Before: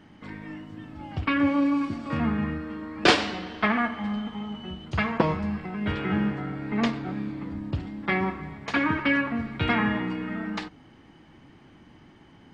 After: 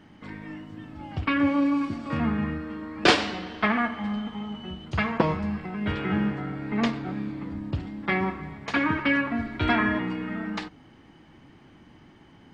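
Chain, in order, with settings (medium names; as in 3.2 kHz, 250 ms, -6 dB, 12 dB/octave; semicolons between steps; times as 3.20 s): 9.31–9.99 s: comb 3 ms, depth 72%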